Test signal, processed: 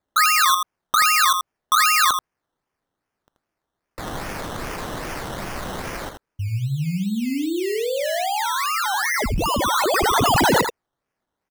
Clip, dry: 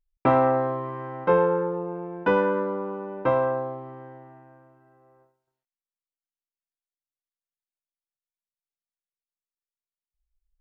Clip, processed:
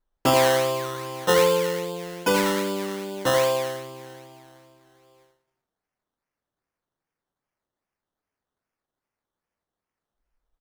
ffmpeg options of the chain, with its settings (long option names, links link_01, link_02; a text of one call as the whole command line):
ffmpeg -i in.wav -af "aemphasis=mode=production:type=cd,acrusher=samples=15:mix=1:aa=0.000001:lfo=1:lforange=9:lforate=2.5,aecho=1:1:82:0.447" out.wav